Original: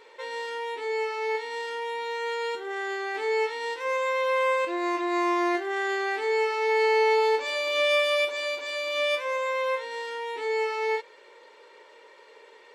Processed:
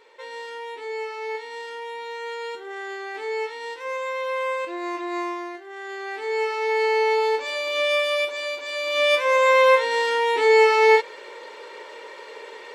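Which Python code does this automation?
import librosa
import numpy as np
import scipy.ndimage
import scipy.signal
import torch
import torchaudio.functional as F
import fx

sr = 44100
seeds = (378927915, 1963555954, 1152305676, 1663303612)

y = fx.gain(x, sr, db=fx.line((5.2, -2.0), (5.57, -11.5), (6.43, 1.0), (8.63, 1.0), (9.51, 12.0)))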